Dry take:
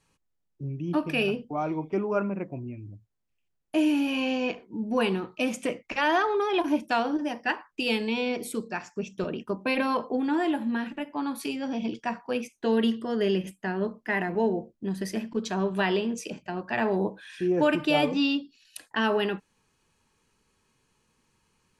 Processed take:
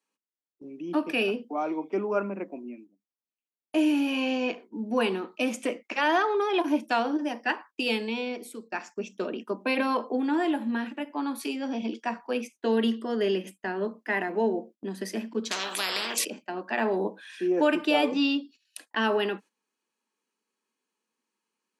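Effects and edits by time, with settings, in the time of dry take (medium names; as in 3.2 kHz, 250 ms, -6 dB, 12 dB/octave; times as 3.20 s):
7.86–8.72 s: fade out, to -12.5 dB
15.51–16.25 s: spectrum-flattening compressor 10:1
whole clip: steep high-pass 210 Hz 48 dB/octave; gate -47 dBFS, range -13 dB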